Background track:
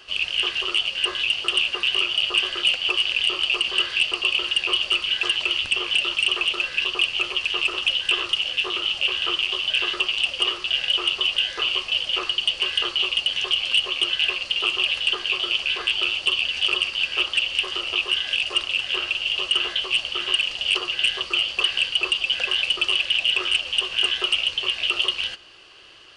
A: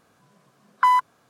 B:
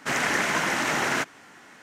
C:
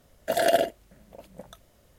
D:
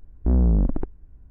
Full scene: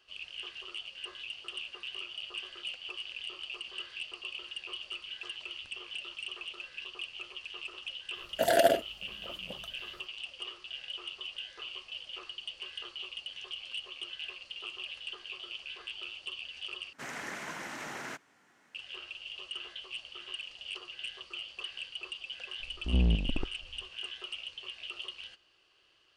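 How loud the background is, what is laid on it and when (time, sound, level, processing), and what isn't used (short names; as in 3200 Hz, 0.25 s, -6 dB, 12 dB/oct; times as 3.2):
background track -19.5 dB
8.11 add C -2 dB, fades 0.10 s
16.93 replace with B -16 dB
22.6 add D -7 dB + chopper 3 Hz, depth 60%, duty 65%
not used: A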